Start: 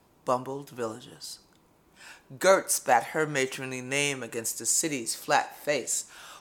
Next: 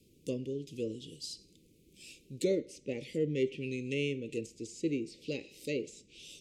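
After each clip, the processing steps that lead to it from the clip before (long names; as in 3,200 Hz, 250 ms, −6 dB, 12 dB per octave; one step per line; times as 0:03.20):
inverse Chebyshev band-stop filter 690–1,700 Hz, stop band 40 dB
treble cut that deepens with the level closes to 1,800 Hz, closed at −29.5 dBFS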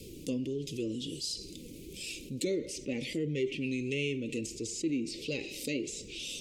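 dynamic equaliser 490 Hz, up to −7 dB, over −46 dBFS, Q 2
flanger 1.5 Hz, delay 1.8 ms, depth 2.4 ms, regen +44%
envelope flattener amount 50%
level +2.5 dB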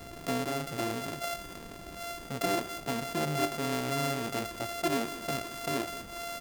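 samples sorted by size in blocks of 64 samples
single-tap delay 198 ms −16.5 dB
level +2 dB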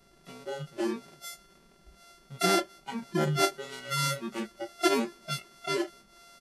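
hearing-aid frequency compression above 3,700 Hz 1.5 to 1
noise reduction from a noise print of the clip's start 22 dB
comb filter 5.2 ms, depth 65%
level +5 dB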